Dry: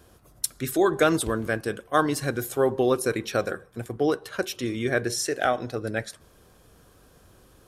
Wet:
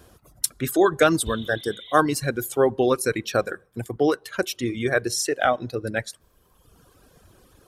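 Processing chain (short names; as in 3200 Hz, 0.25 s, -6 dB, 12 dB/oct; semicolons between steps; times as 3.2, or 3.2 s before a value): spectral repair 1.28–1.95, 1900–4300 Hz both; reverb removal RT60 1.3 s; gain +3.5 dB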